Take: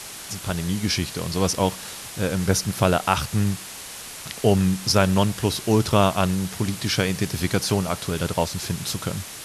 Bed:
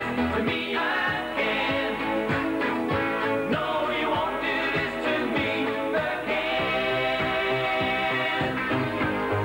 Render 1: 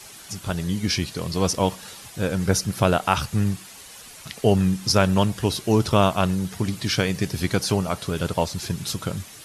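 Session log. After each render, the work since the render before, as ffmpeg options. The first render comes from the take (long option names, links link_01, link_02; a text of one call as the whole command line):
ffmpeg -i in.wav -af "afftdn=noise_reduction=9:noise_floor=-38" out.wav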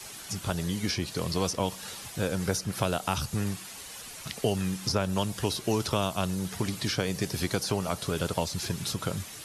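ffmpeg -i in.wav -filter_complex "[0:a]acrossover=split=370|1300|3500[link_01][link_02][link_03][link_04];[link_01]acompressor=threshold=-30dB:ratio=4[link_05];[link_02]acompressor=threshold=-30dB:ratio=4[link_06];[link_03]acompressor=threshold=-41dB:ratio=4[link_07];[link_04]acompressor=threshold=-33dB:ratio=4[link_08];[link_05][link_06][link_07][link_08]amix=inputs=4:normalize=0" out.wav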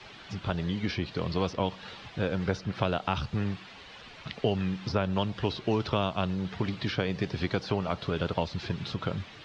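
ffmpeg -i in.wav -af "lowpass=frequency=3800:width=0.5412,lowpass=frequency=3800:width=1.3066" out.wav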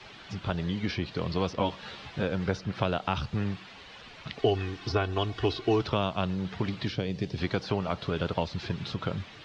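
ffmpeg -i in.wav -filter_complex "[0:a]asettb=1/sr,asplit=3[link_01][link_02][link_03];[link_01]atrim=end=1.564[link_04];[link_02]atrim=start=1.56:end=2.23,asetpts=PTS-STARTPTS,afade=type=in:duration=0.004:curve=qsin,afade=type=out:start_time=0.666:duration=0.004:curve=qsin,asplit=2[link_05][link_06];[link_06]adelay=14,volume=-4dB[link_07];[link_05][link_07]amix=inputs=2:normalize=0,atrim=end_sample=29547[link_08];[link_03]atrim=start=2.226[link_09];[link_04][link_08]acrossfade=duration=0.004:curve1=hsin:curve2=qsin[link_10];[link_10][link_09]acrossfade=duration=0.004:curve1=qsin:curve2=hsin,asettb=1/sr,asplit=3[link_11][link_12][link_13];[link_11]atrim=end=4.384[link_14];[link_12]atrim=start=4.38:end=5.81,asetpts=PTS-STARTPTS,afade=type=in:duration=0.004:curve=qsin,afade=type=out:start_time=1.426:duration=0.004:curve=qsin,aecho=1:1:2.7:0.82,atrim=end_sample=63063[link_15];[link_13]atrim=start=5.806[link_16];[link_14][link_15]acrossfade=duration=0.004:curve1=hsin:curve2=qsin[link_17];[link_17][link_16]acrossfade=duration=0.004:curve1=qsin:curve2=hsin,asettb=1/sr,asplit=3[link_18][link_19][link_20];[link_18]atrim=end=6.884[link_21];[link_19]atrim=start=6.88:end=7.38,asetpts=PTS-STARTPTS,afade=type=in:duration=0.004:curve=qsin,afade=type=out:start_time=0.496:duration=0.004:curve=qsin,equalizer=frequency=1300:width=0.76:gain=-10.5[link_22];[link_20]atrim=start=7.376[link_23];[link_21][link_22]acrossfade=duration=0.004:curve1=hsin:curve2=qsin[link_24];[link_24][link_23]acrossfade=duration=0.004:curve1=qsin:curve2=hsin" out.wav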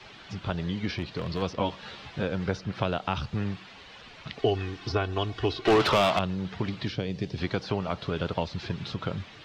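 ffmpeg -i in.wav -filter_complex "[0:a]asettb=1/sr,asplit=3[link_01][link_02][link_03];[link_01]atrim=end=0.964[link_04];[link_02]atrim=start=0.96:end=1.42,asetpts=PTS-STARTPTS,afade=type=in:duration=0.004:curve=qsin,afade=type=out:start_time=0.456:duration=0.004:curve=qsin,asoftclip=type=hard:threshold=-24.5dB[link_05];[link_03]atrim=start=1.416[link_06];[link_04][link_05]acrossfade=duration=0.004:curve1=hsin:curve2=qsin[link_07];[link_07][link_06]acrossfade=duration=0.004:curve1=qsin:curve2=hsin,asettb=1/sr,asplit=3[link_08][link_09][link_10];[link_08]atrim=end=5.654[link_11];[link_09]atrim=start=5.65:end=6.19,asetpts=PTS-STARTPTS,afade=type=in:duration=0.004:curve=qsin,afade=type=out:start_time=0.536:duration=0.004:curve=qsin,asplit=2[link_12][link_13];[link_13]highpass=frequency=720:poles=1,volume=26dB,asoftclip=type=tanh:threshold=-13dB[link_14];[link_12][link_14]amix=inputs=2:normalize=0,lowpass=frequency=3000:poles=1,volume=-6dB[link_15];[link_10]atrim=start=6.186[link_16];[link_11][link_15]acrossfade=duration=0.004:curve1=hsin:curve2=qsin[link_17];[link_17][link_16]acrossfade=duration=0.004:curve1=qsin:curve2=hsin" out.wav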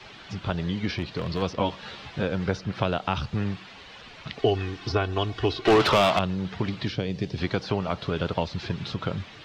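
ffmpeg -i in.wav -af "volume=2.5dB" out.wav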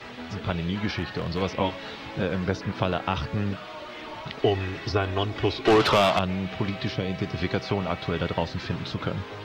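ffmpeg -i in.wav -i bed.wav -filter_complex "[1:a]volume=-14dB[link_01];[0:a][link_01]amix=inputs=2:normalize=0" out.wav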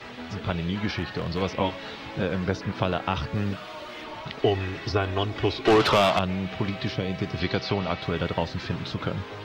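ffmpeg -i in.wav -filter_complex "[0:a]asettb=1/sr,asplit=3[link_01][link_02][link_03];[link_01]atrim=end=3.354[link_04];[link_02]atrim=start=3.35:end=4.04,asetpts=PTS-STARTPTS,afade=type=in:duration=0.004:curve=qsin,afade=type=out:start_time=0.686:duration=0.004:curve=qsin,highshelf=frequency=7300:gain=7.5[link_05];[link_03]atrim=start=4.036[link_06];[link_04][link_05]acrossfade=duration=0.004:curve1=hsin:curve2=qsin[link_07];[link_07][link_06]acrossfade=duration=0.004:curve1=qsin:curve2=hsin,asettb=1/sr,asplit=3[link_08][link_09][link_10];[link_08]atrim=end=7.404[link_11];[link_09]atrim=start=7.4:end=8.02,asetpts=PTS-STARTPTS,afade=type=in:duration=0.004:curve=qsin,afade=type=out:start_time=0.616:duration=0.004:curve=qsin,lowpass=frequency=4800:width_type=q:width=1.8[link_12];[link_10]atrim=start=8.016[link_13];[link_11][link_12]acrossfade=duration=0.004:curve1=hsin:curve2=qsin[link_14];[link_14][link_13]acrossfade=duration=0.004:curve1=qsin:curve2=hsin" out.wav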